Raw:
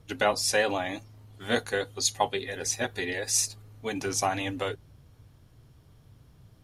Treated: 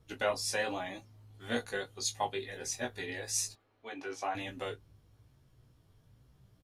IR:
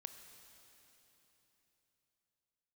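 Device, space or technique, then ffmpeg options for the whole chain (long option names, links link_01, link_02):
double-tracked vocal: -filter_complex "[0:a]asplit=2[link_01][link_02];[link_02]adelay=21,volume=-12dB[link_03];[link_01][link_03]amix=inputs=2:normalize=0,flanger=delay=15.5:depth=2.9:speed=1.1,asettb=1/sr,asplit=3[link_04][link_05][link_06];[link_04]atrim=end=3.554[link_07];[link_05]atrim=start=3.55:end=4.35,asetpts=PTS-STARTPTS,afade=type=in:duration=0.004:curve=qsin,afade=type=out:start_time=0.796:duration=0.004:curve=qsin,acrossover=split=300 3900:gain=0.1 1 0.141[link_08][link_09][link_10];[link_08][link_09][link_10]amix=inputs=3:normalize=0[link_11];[link_06]atrim=start=4.346[link_12];[link_07][link_11]acrossfade=duration=0.004:curve1=hsin:curve2=qsin[link_13];[link_13][link_12]acrossfade=duration=0.004:curve1=qsin:curve2=hsin,volume=-5dB"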